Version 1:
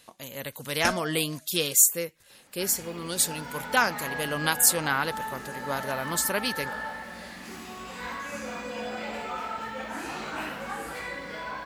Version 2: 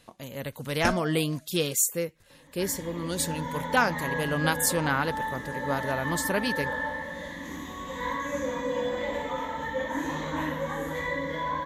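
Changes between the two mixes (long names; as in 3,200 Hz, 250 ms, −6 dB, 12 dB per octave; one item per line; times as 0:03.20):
second sound: add EQ curve with evenly spaced ripples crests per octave 1.1, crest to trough 16 dB
master: add spectral tilt −2 dB per octave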